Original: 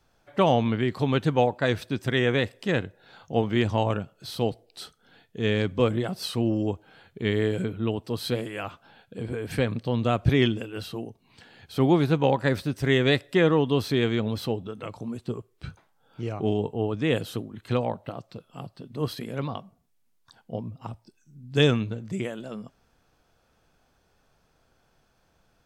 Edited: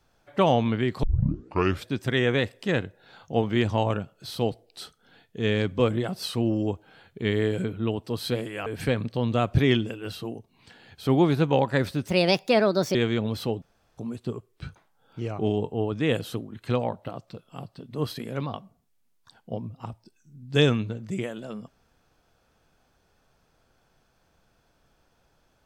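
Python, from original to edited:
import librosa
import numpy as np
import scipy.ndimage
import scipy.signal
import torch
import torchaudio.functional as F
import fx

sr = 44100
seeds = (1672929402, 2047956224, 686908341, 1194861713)

y = fx.edit(x, sr, fx.tape_start(start_s=1.03, length_s=0.84),
    fx.cut(start_s=8.66, length_s=0.71),
    fx.speed_span(start_s=12.79, length_s=1.17, speed=1.35),
    fx.room_tone_fill(start_s=14.63, length_s=0.36), tone=tone)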